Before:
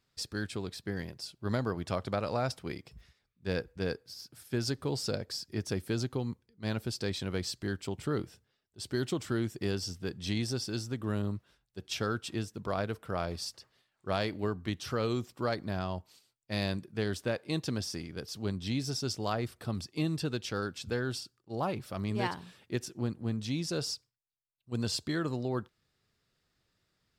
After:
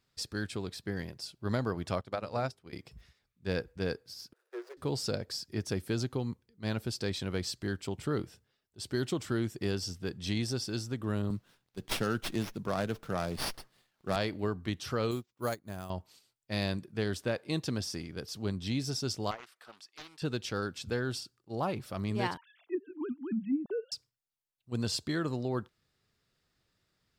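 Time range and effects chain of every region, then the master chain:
0:02.01–0:02.73: mains-hum notches 50/100/150/200/250/300/350/400/450 Hz + expander for the loud parts 2.5 to 1, over −40 dBFS
0:04.33–0:04.77: running median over 41 samples + Chebyshev high-pass with heavy ripple 350 Hz, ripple 9 dB
0:11.30–0:14.16: high-pass filter 160 Hz + bass and treble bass +8 dB, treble +11 dB + windowed peak hold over 5 samples
0:15.11–0:15.90: sample-rate reduction 11,000 Hz + expander for the loud parts 2.5 to 1, over −45 dBFS
0:19.31–0:20.22: high-pass filter 1,300 Hz + high-shelf EQ 2,600 Hz −9.5 dB + highs frequency-modulated by the lows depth 0.58 ms
0:22.37–0:23.92: three sine waves on the formant tracks + treble cut that deepens with the level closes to 390 Hz, closed at −27.5 dBFS
whole clip: no processing

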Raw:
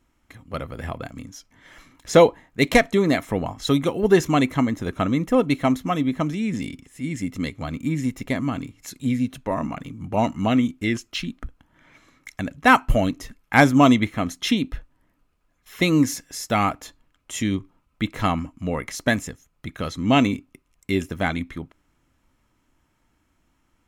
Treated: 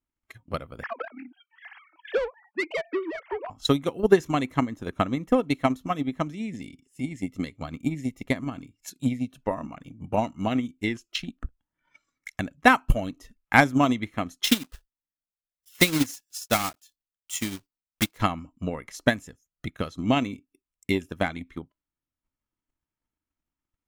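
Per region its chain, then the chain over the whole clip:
0:00.83–0:03.50: three sine waves on the formant tracks + downward compressor 1.5 to 1, threshold −46 dBFS + mid-hump overdrive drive 23 dB, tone 2,300 Hz, clips at −15.5 dBFS
0:14.44–0:18.20: one scale factor per block 3 bits + high-shelf EQ 2,400 Hz +7.5 dB + expander for the loud parts, over −38 dBFS
whole clip: noise reduction from a noise print of the clip's start 15 dB; transient designer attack +11 dB, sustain −3 dB; level −9.5 dB

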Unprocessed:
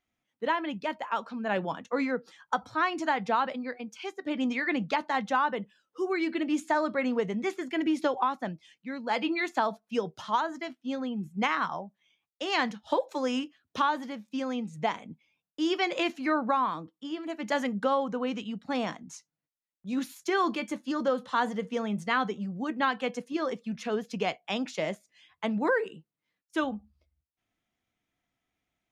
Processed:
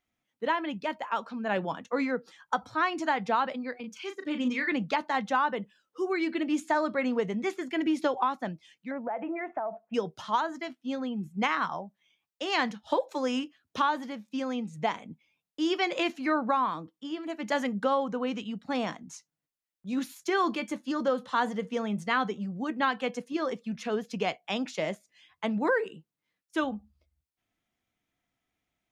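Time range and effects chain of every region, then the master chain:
0:03.80–0:04.72: high-pass filter 120 Hz + parametric band 730 Hz −14.5 dB 0.33 octaves + double-tracking delay 36 ms −7.5 dB
0:08.91–0:09.94: parametric band 680 Hz +14 dB 0.67 octaves + downward compressor 10 to 1, threshold −29 dBFS + inverse Chebyshev low-pass filter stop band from 4,000 Hz
whole clip: no processing

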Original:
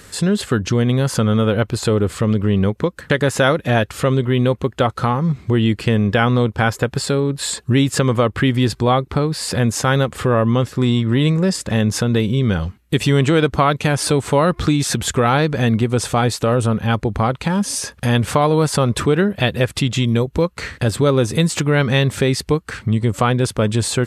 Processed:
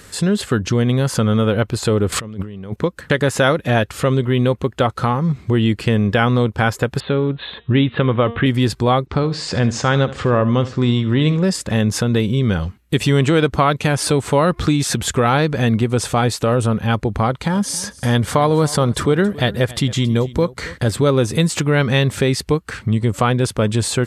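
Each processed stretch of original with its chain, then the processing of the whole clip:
0:02.12–0:02.76: parametric band 72 Hz −12.5 dB 0.26 octaves + compressor whose output falls as the input rises −29 dBFS + transient designer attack +6 dB, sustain +1 dB
0:07.00–0:08.46: Butterworth low-pass 3,800 Hz 96 dB per octave + hum removal 233.2 Hz, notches 17
0:09.06–0:11.44: low-pass filter 6,600 Hz 24 dB per octave + repeating echo 73 ms, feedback 30%, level −15.5 dB
0:17.26–0:20.92: notch filter 2,600 Hz, Q 8.2 + single-tap delay 274 ms −19 dB
whole clip: no processing

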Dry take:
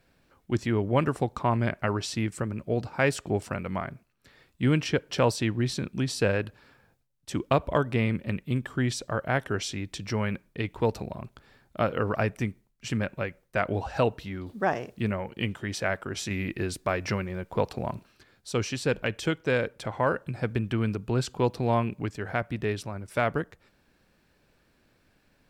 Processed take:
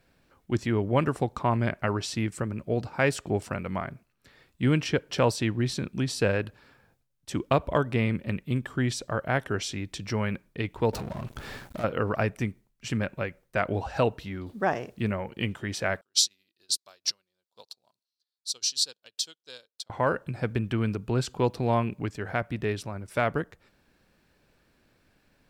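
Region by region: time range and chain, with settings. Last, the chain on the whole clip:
0:10.93–0:11.84: downward compressor 8 to 1, threshold −45 dBFS + leveller curve on the samples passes 5
0:16.01–0:19.90: high-pass filter 1,200 Hz 6 dB per octave + high shelf with overshoot 3,000 Hz +12 dB, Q 3 + expander for the loud parts 2.5 to 1, over −43 dBFS
whole clip: no processing

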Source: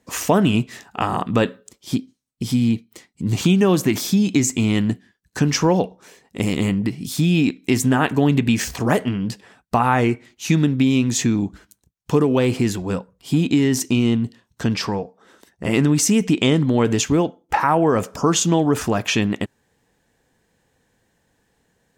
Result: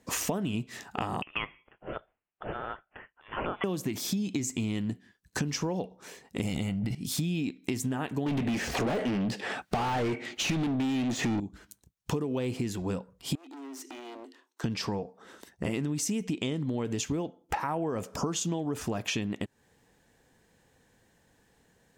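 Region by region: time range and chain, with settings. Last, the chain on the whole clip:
0:01.22–0:03.64: high-pass filter 850 Hz 24 dB per octave + spectral tilt +2 dB per octave + voice inversion scrambler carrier 3,800 Hz
0:06.45–0:06.95: transient designer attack +6 dB, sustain +11 dB + comb filter 1.4 ms, depth 52%
0:08.26–0:11.40: de-essing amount 80% + notch filter 1,000 Hz, Q 8.8 + mid-hump overdrive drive 32 dB, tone 2,000 Hz, clips at −5.5 dBFS
0:13.35–0:14.64: gain into a clipping stage and back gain 21.5 dB + Chebyshev high-pass with heavy ripple 260 Hz, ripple 6 dB + downward compressor 12 to 1, threshold −39 dBFS
whole clip: dynamic equaliser 1,400 Hz, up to −4 dB, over −34 dBFS, Q 1.2; downward compressor 6 to 1, threshold −29 dBFS

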